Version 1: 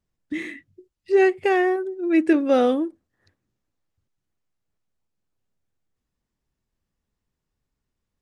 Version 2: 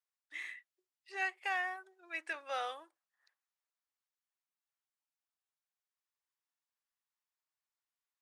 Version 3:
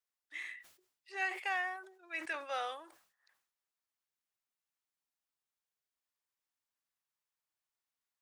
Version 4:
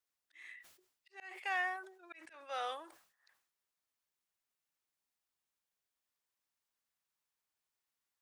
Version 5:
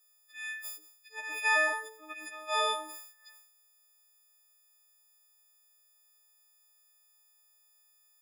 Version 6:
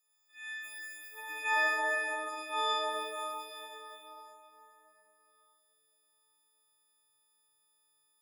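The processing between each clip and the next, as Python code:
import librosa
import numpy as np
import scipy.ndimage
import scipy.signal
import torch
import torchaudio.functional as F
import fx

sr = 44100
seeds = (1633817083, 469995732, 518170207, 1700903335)

y1 = scipy.signal.sosfilt(scipy.signal.butter(4, 830.0, 'highpass', fs=sr, output='sos'), x)
y1 = y1 * librosa.db_to_amplitude(-8.5)
y2 = fx.sustainer(y1, sr, db_per_s=97.0)
y3 = fx.auto_swell(y2, sr, attack_ms=431.0)
y3 = y3 * librosa.db_to_amplitude(1.5)
y4 = fx.freq_snap(y3, sr, grid_st=6)
y4 = y4 * librosa.db_to_amplitude(6.5)
y5 = fx.rev_plate(y4, sr, seeds[0], rt60_s=4.0, hf_ratio=0.8, predelay_ms=0, drr_db=-7.5)
y5 = y5 * librosa.db_to_amplitude(-8.5)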